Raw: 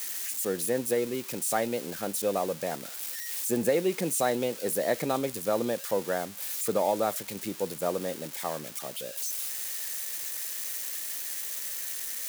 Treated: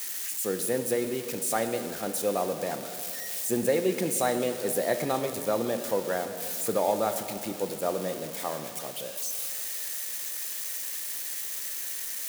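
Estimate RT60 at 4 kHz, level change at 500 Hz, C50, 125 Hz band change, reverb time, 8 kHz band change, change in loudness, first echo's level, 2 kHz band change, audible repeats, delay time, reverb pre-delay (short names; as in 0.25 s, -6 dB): 2.4 s, +0.5 dB, 8.0 dB, +0.5 dB, 2.8 s, +0.5 dB, +0.5 dB, none, +1.0 dB, none, none, 3 ms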